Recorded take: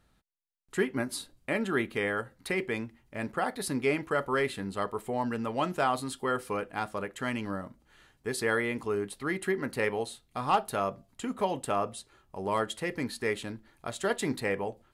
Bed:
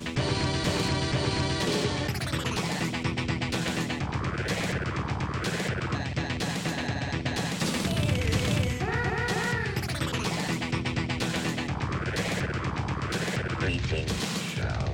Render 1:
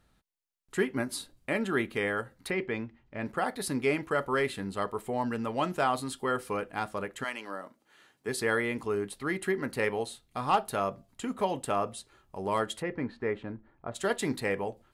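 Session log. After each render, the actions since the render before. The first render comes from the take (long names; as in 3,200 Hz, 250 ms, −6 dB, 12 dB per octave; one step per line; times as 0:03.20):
0:02.50–0:03.26: high-frequency loss of the air 160 metres
0:07.23–0:08.27: high-pass filter 640 Hz → 170 Hz
0:12.81–0:13.94: low-pass filter 1,900 Hz → 1,200 Hz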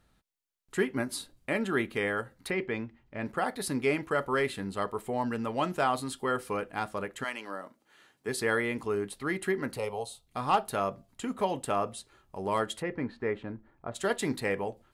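0:09.77–0:10.27: phaser with its sweep stopped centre 710 Hz, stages 4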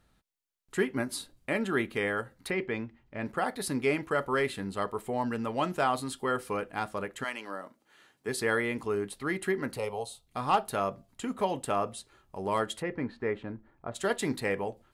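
no processing that can be heard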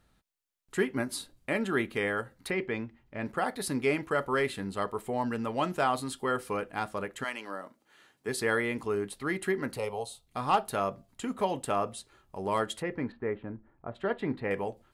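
0:13.12–0:14.51: high-frequency loss of the air 460 metres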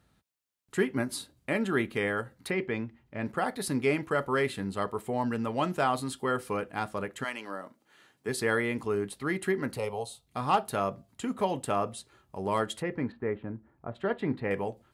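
high-pass filter 84 Hz
low-shelf EQ 150 Hz +7 dB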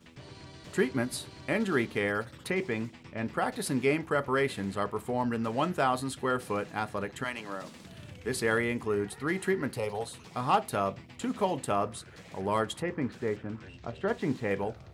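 mix in bed −21 dB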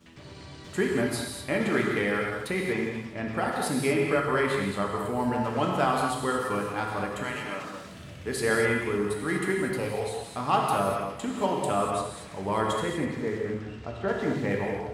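echo with a time of its own for lows and highs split 380 Hz, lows 112 ms, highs 163 ms, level −15 dB
reverb whose tail is shaped and stops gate 270 ms flat, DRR −0.5 dB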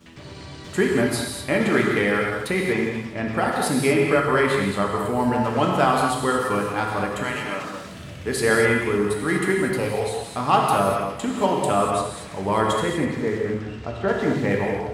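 level +6 dB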